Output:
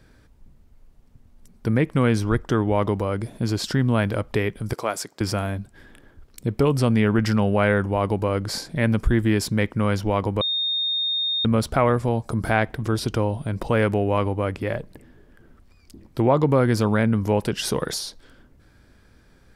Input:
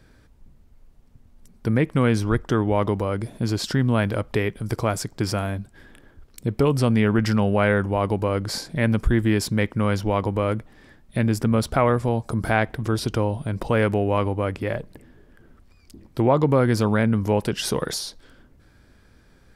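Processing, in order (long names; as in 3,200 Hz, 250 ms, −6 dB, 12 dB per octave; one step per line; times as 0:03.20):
0:04.73–0:05.21: Bessel high-pass filter 410 Hz, order 2
0:10.41–0:11.45: beep over 3,680 Hz −21 dBFS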